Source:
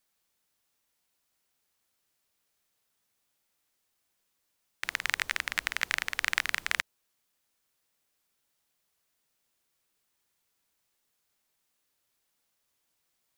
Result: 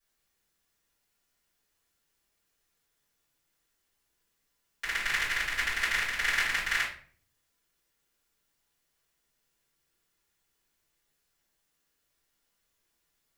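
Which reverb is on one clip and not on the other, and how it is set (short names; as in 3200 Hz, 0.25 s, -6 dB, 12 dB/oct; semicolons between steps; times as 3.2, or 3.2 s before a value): shoebox room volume 46 m³, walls mixed, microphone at 3.3 m; gain -13 dB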